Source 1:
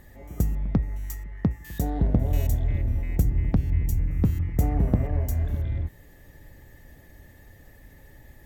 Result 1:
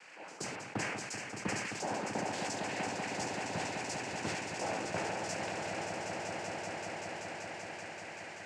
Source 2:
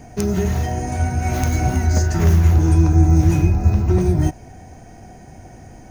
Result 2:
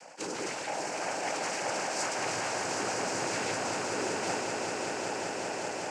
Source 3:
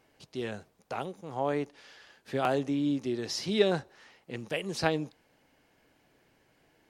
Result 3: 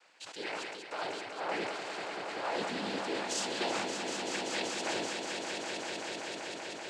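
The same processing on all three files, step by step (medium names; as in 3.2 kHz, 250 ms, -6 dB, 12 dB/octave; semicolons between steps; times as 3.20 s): high-pass 740 Hz 12 dB/octave; reverse; compression, threshold -42 dBFS; reverse; in parallel at -9.5 dB: small samples zeroed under -45 dBFS; on the sum: noise-vocoded speech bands 8; echo with a slow build-up 192 ms, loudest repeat 5, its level -7.5 dB; decay stretcher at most 32 dB/s; trim +6 dB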